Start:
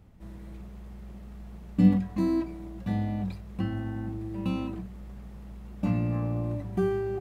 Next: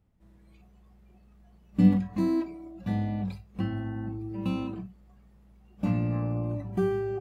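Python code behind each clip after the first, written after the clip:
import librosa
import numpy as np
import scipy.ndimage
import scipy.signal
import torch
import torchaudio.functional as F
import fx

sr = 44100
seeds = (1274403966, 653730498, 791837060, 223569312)

y = fx.noise_reduce_blind(x, sr, reduce_db=14)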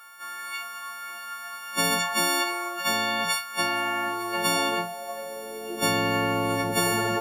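y = fx.freq_snap(x, sr, grid_st=4)
y = fx.filter_sweep_highpass(y, sr, from_hz=1300.0, to_hz=310.0, start_s=4.02, end_s=6.09, q=7.3)
y = fx.spectral_comp(y, sr, ratio=10.0)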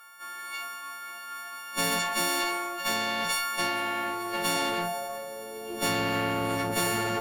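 y = fx.tube_stage(x, sr, drive_db=19.0, bias=0.6)
y = fx.sustainer(y, sr, db_per_s=24.0)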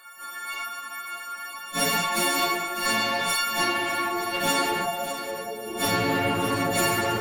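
y = fx.phase_scramble(x, sr, seeds[0], window_ms=100)
y = y + 10.0 ** (-11.0 / 20.0) * np.pad(y, (int(602 * sr / 1000.0), 0))[:len(y)]
y = F.gain(torch.from_numpy(y), 3.5).numpy()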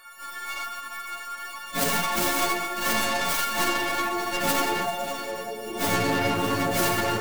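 y = fx.tracing_dist(x, sr, depth_ms=0.31)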